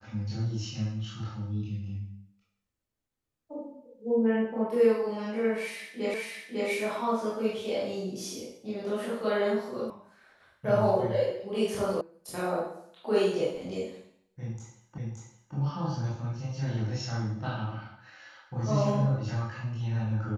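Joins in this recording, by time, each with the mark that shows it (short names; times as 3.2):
6.14 repeat of the last 0.55 s
9.9 sound cut off
12.01 sound cut off
14.98 repeat of the last 0.57 s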